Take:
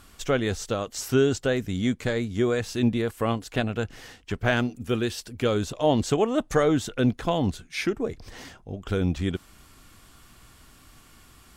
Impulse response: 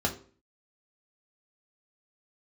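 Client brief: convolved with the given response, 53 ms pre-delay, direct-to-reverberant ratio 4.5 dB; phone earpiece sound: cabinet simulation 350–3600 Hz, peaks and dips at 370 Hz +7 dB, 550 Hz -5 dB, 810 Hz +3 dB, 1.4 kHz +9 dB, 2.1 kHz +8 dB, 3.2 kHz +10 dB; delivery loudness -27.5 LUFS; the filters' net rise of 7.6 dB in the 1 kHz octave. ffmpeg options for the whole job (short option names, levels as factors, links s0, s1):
-filter_complex "[0:a]equalizer=f=1000:t=o:g=5,asplit=2[s0][s1];[1:a]atrim=start_sample=2205,adelay=53[s2];[s1][s2]afir=irnorm=-1:irlink=0,volume=0.224[s3];[s0][s3]amix=inputs=2:normalize=0,highpass=350,equalizer=f=370:t=q:w=4:g=7,equalizer=f=550:t=q:w=4:g=-5,equalizer=f=810:t=q:w=4:g=3,equalizer=f=1400:t=q:w=4:g=9,equalizer=f=2100:t=q:w=4:g=8,equalizer=f=3200:t=q:w=4:g=10,lowpass=f=3600:w=0.5412,lowpass=f=3600:w=1.3066,volume=0.562"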